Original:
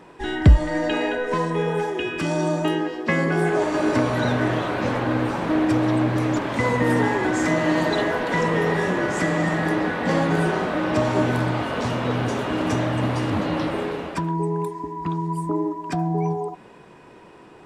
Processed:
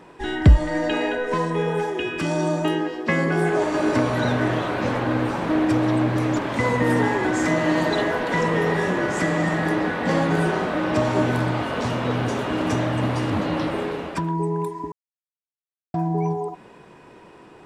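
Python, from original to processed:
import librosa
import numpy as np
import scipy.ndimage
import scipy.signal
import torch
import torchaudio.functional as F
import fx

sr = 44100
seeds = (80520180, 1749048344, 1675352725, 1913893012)

y = fx.edit(x, sr, fx.silence(start_s=14.92, length_s=1.02), tone=tone)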